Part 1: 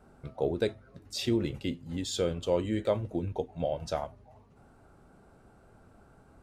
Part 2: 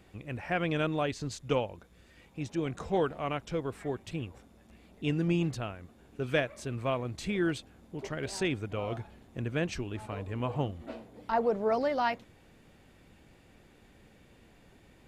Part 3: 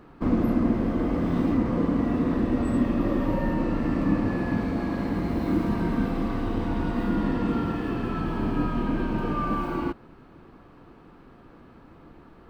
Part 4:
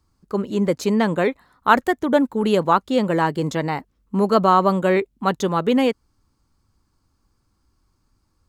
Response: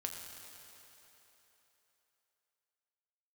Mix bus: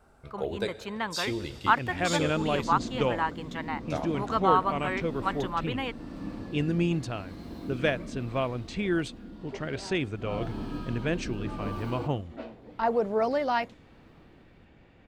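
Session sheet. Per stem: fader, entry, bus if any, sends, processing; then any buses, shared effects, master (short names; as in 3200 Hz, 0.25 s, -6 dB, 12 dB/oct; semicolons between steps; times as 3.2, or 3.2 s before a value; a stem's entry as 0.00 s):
-1.5 dB, 0.00 s, muted 2.31–3.9, send -3.5 dB, bell 200 Hz -9 dB 2.6 oct
+2.0 dB, 1.50 s, no send, low-pass opened by the level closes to 2900 Hz, open at -25 dBFS
8.09 s -13 dB -> 8.89 s -19.5 dB -> 10.12 s -19.5 dB -> 10.34 s -8 dB, 2.15 s, no send, resonant high shelf 2900 Hz +7.5 dB, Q 1.5; rotary speaker horn 0.9 Hz
-18.5 dB, 0.00 s, no send, band shelf 1700 Hz +12 dB 2.5 oct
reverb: on, RT60 3.6 s, pre-delay 5 ms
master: dry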